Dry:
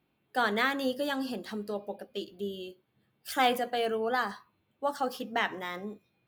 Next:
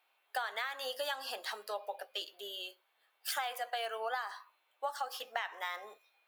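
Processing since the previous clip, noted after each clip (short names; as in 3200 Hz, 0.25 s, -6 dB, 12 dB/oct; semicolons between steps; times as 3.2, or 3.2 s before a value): HPF 680 Hz 24 dB/oct; in parallel at -1 dB: limiter -21 dBFS, peak gain reduction 7.5 dB; on the sum: compressor 16:1, threshold -33 dBFS, peak gain reduction 15.5 dB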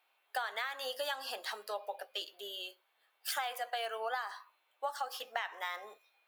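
nothing audible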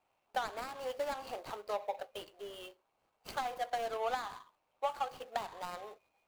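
median filter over 25 samples; gain +4 dB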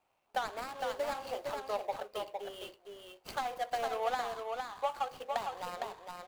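echo 0.459 s -4.5 dB; gain +1 dB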